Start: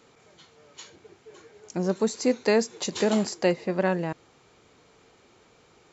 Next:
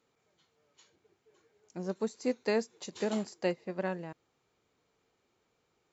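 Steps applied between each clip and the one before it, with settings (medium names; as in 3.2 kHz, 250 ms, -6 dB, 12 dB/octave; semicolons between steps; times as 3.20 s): upward expansion 1.5:1, over -39 dBFS; trim -7.5 dB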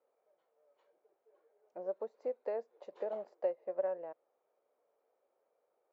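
compression 4:1, threshold -33 dBFS, peak gain reduction 7.5 dB; ladder band-pass 630 Hz, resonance 65%; trim +8 dB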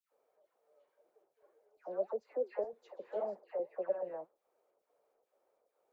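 square tremolo 2.3 Hz, depth 65%, duty 80%; phase dispersion lows, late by 122 ms, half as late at 1.5 kHz; flange 1.8 Hz, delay 0.1 ms, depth 8.5 ms, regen +74%; trim +6.5 dB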